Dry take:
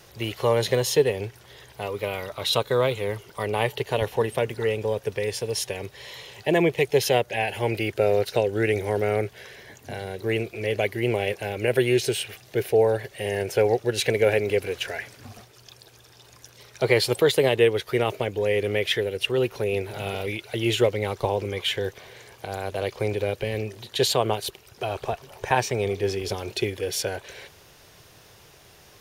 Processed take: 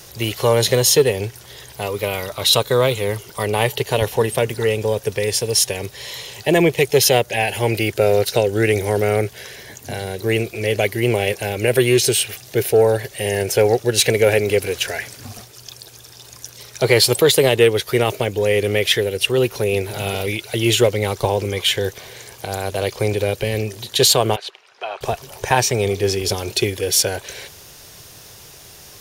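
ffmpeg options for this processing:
-filter_complex "[0:a]asettb=1/sr,asplit=3[a][b][c];[a]atrim=end=24.364[d];[b]atrim=start=24.36:end=25.01,asetpts=PTS-STARTPTS,afade=t=in:d=0.004:c=qsin,afade=t=out:st=0.646:d=0.004:c=qsin,highpass=790,lowpass=2.5k[e];[c]atrim=start=25.006[f];[d][e]acrossfade=d=0.004:c1=hsin:c2=qsin[g];[g][f]acrossfade=d=0.004:c1=qsin:c2=hsin,bass=f=250:g=2,treble=f=4k:g=9,acontrast=46"

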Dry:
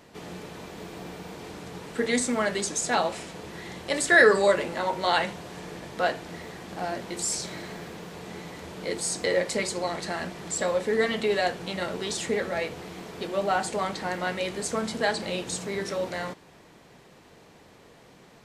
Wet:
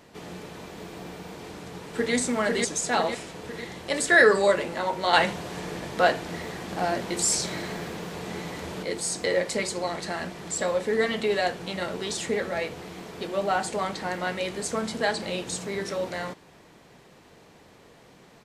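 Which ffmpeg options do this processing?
-filter_complex "[0:a]asplit=2[a][b];[b]afade=t=in:st=1.43:d=0.01,afade=t=out:st=2.14:d=0.01,aecho=0:1:500|1000|1500|2000|2500|3000|3500|4000:0.794328|0.436881|0.240284|0.132156|0.072686|0.0399773|0.0219875|0.0120931[c];[a][c]amix=inputs=2:normalize=0,asettb=1/sr,asplit=3[d][e][f];[d]atrim=end=5.134[g];[e]atrim=start=5.13:end=8.83,asetpts=PTS-STARTPTS,afade=t=in:d=0.004:c=qsin,afade=t=out:st=3.696:d=0.004:c=qsin,acontrast=24[h];[f]atrim=start=8.826[i];[g][h]acrossfade=d=0.004:c1=hsin:c2=qsin[j];[j][i]acrossfade=d=0.004:c1=qsin:c2=hsin"

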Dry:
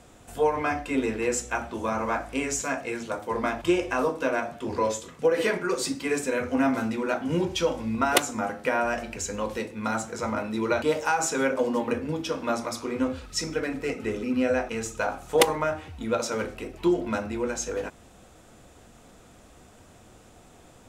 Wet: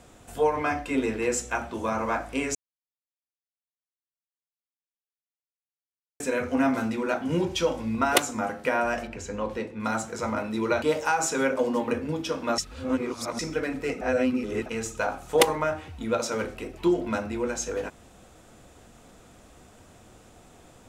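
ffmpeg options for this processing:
-filter_complex "[0:a]asettb=1/sr,asplit=3[a][b][c];[a]atrim=end=9.074[d];[b]atrim=start=9.07:end=9.8,asetpts=PTS-STARTPTS,afade=t=in:d=0.004:c=qsin,afade=t=out:st=0.726:d=0.004:c=qsin,lowpass=f=2.2k:p=1[e];[c]atrim=start=9.796[f];[d][e]acrossfade=d=0.004:c1=hsin:c2=qsin[g];[g][f]acrossfade=d=0.004:c1=qsin:c2=hsin,asplit=7[h][i][j][k][l][m][n];[h]atrim=end=2.55,asetpts=PTS-STARTPTS,afade=t=out:st=2.546:d=0.004:c=hsin[o];[i]atrim=start=2.55:end=6.2,asetpts=PTS-STARTPTS,volume=0[p];[j]atrim=start=6.2:end=12.582,asetpts=PTS-STARTPTS,afade=t=in:d=0.004:c=hsin[q];[k]atrim=start=12.578:end=13.392,asetpts=PTS-STARTPTS,areverse[r];[l]atrim=start=13.388:end=14.012[s];[m]atrim=start=14.008:end=14.662,asetpts=PTS-STARTPTS,areverse[t];[n]atrim=start=14.658[u];[o][p][q]concat=n=3:v=0:a=1[v];[v][r]acrossfade=d=0.004:c1=hsin:c2=hsin[w];[w][s]acrossfade=d=0.004:c1=hsin:c2=hsin[x];[x][t]acrossfade=d=0.004:c1=hsin:c2=hsin[y];[y][u]acrossfade=d=0.004:c1=hsin:c2=hsin"

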